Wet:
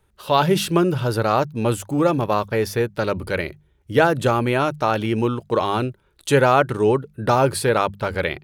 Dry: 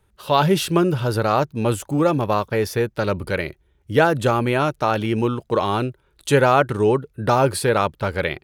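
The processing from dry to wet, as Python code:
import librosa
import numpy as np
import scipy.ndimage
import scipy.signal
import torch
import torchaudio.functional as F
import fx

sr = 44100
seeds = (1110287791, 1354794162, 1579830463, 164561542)

y = fx.hum_notches(x, sr, base_hz=50, count=4)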